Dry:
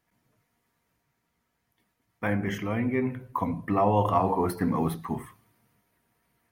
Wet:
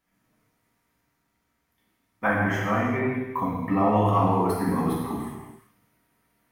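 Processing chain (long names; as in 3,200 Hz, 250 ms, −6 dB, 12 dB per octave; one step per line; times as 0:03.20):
0:02.24–0:02.98: flat-topped bell 990 Hz +9 dB
reverb whose tail is shaped and stops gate 440 ms falling, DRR −4.5 dB
level −3 dB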